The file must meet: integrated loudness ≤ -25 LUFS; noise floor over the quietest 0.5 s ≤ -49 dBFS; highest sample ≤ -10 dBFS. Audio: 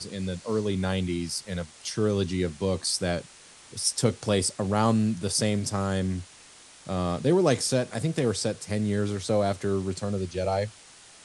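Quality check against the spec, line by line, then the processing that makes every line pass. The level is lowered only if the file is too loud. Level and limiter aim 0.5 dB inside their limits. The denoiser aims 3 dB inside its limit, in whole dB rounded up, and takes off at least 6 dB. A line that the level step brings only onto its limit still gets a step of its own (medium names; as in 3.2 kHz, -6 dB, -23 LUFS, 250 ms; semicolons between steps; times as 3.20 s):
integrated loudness -27.5 LUFS: pass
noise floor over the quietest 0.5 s -51 dBFS: pass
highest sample -8.5 dBFS: fail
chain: peak limiter -10.5 dBFS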